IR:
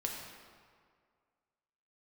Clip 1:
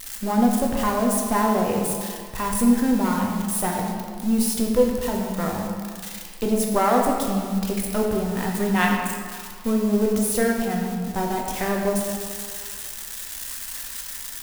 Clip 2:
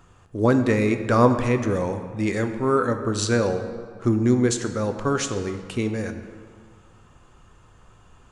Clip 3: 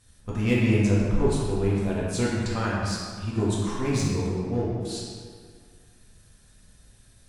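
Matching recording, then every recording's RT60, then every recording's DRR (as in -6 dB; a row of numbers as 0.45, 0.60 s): 1; 2.0, 2.0, 2.0 s; -0.5, 7.0, -6.5 dB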